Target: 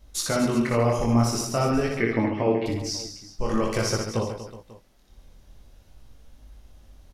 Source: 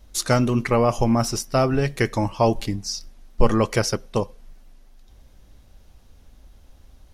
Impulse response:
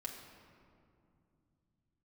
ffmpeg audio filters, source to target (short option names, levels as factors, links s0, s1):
-filter_complex "[0:a]alimiter=limit=0.237:level=0:latency=1:release=95,flanger=delay=17.5:depth=7.5:speed=0.48,asettb=1/sr,asplit=3[s0][s1][s2];[s0]atrim=end=1.944[s3];[s1]atrim=start=1.94:end=2.66,asetpts=PTS-STARTPTS,afade=t=in:d=0.004:c=qsin,afade=t=out:st=0.716:d=0.004:c=qsin,highpass=130,equalizer=f=260:t=q:w=4:g=9,equalizer=f=410:t=q:w=4:g=6,equalizer=f=870:t=q:w=4:g=-6,equalizer=f=2100:t=q:w=4:g=8,lowpass=f=2900:w=0.5412,lowpass=f=2900:w=1.3066[s4];[s2]atrim=start=2.656[s5];[s3][s4]acrossfade=d=0.004:c1=hsin:c2=qsin[s6];[s6][s5]acrossfade=d=0.004:c1=qsin:c2=hsin,aecho=1:1:60|138|239.4|371.2|542.6:0.631|0.398|0.251|0.158|0.1"